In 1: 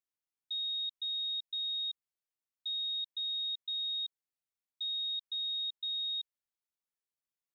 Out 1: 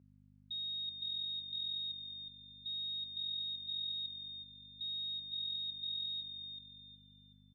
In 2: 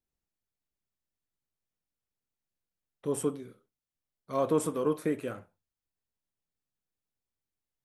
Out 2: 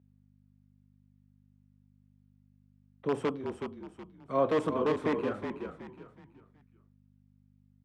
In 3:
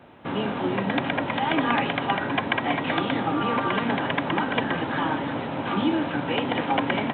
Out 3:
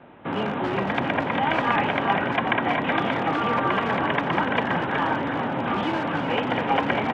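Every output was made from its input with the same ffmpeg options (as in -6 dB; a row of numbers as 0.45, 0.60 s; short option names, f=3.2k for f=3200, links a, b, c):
-filter_complex "[0:a]acrossover=split=190|360|2000[a][b][c][d];[b]aeval=exprs='(mod(29.9*val(0)+1,2)-1)/29.9':c=same[e];[a][e][c][d]amix=inputs=4:normalize=0,asplit=5[f][g][h][i][j];[g]adelay=371,afreqshift=-42,volume=-7dB[k];[h]adelay=742,afreqshift=-84,volume=-16.4dB[l];[i]adelay=1113,afreqshift=-126,volume=-25.7dB[m];[j]adelay=1484,afreqshift=-168,volume=-35.1dB[n];[f][k][l][m][n]amix=inputs=5:normalize=0,aeval=exprs='val(0)+0.00112*(sin(2*PI*50*n/s)+sin(2*PI*2*50*n/s)/2+sin(2*PI*3*50*n/s)/3+sin(2*PI*4*50*n/s)/4+sin(2*PI*5*50*n/s)/5)':c=same,highpass=100,lowpass=2.7k,volume=2dB"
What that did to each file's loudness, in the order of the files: -5.0, -0.5, +1.5 LU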